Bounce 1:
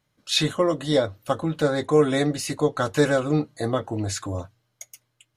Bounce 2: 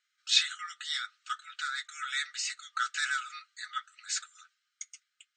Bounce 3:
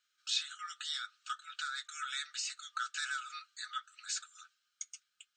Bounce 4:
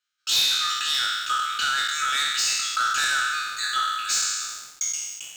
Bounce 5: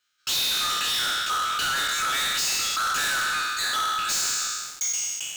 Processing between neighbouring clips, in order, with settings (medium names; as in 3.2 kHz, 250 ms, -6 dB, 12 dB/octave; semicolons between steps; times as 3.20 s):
FFT band-pass 1.2–8.7 kHz; trim -1.5 dB
peaking EQ 2 kHz -11.5 dB 0.26 oct; compression 2:1, threshold -40 dBFS, peak gain reduction 12 dB; trim +1 dB
spectral sustain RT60 1.50 s; waveshaping leveller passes 3; trim +1.5 dB
saturation -31.5 dBFS, distortion -7 dB; trim +8 dB